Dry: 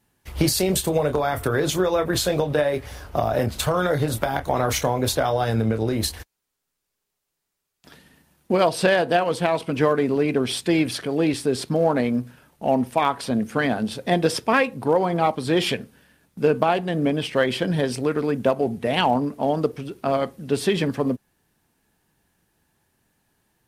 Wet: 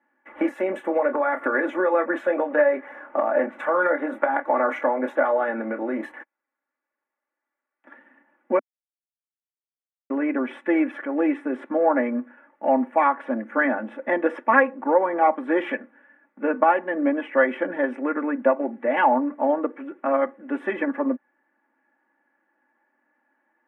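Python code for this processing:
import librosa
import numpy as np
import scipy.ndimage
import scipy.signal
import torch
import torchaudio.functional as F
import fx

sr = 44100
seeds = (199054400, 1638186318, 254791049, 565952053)

y = fx.band_squash(x, sr, depth_pct=40, at=(1.41, 1.94))
y = fx.edit(y, sr, fx.silence(start_s=8.59, length_s=1.51), tone=tone)
y = scipy.signal.sosfilt(scipy.signal.ellip(3, 1.0, 40, [250.0, 1900.0], 'bandpass', fs=sr, output='sos'), y)
y = fx.low_shelf(y, sr, hz=490.0, db=-10.5)
y = y + 0.89 * np.pad(y, (int(3.5 * sr / 1000.0), 0))[:len(y)]
y = y * librosa.db_to_amplitude(3.0)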